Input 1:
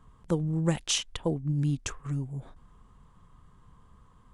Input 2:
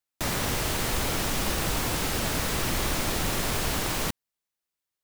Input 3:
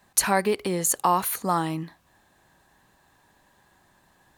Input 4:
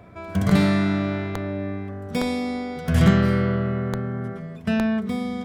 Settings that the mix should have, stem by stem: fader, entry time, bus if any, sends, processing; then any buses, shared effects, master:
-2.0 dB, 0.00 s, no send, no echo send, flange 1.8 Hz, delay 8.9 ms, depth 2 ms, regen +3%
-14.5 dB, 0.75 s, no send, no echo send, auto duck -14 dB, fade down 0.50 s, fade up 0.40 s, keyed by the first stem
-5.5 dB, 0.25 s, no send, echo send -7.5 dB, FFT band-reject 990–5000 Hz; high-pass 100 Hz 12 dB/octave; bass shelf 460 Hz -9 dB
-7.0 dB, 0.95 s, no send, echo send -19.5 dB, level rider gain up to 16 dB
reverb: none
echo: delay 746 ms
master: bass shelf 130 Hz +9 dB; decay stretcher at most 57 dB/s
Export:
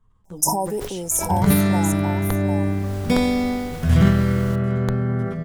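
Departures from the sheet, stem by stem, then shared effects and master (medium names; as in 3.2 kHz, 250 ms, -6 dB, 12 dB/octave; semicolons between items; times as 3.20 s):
stem 1 -2.0 dB -> -9.5 dB; stem 2: entry 0.75 s -> 0.45 s; stem 3 -5.5 dB -> +1.0 dB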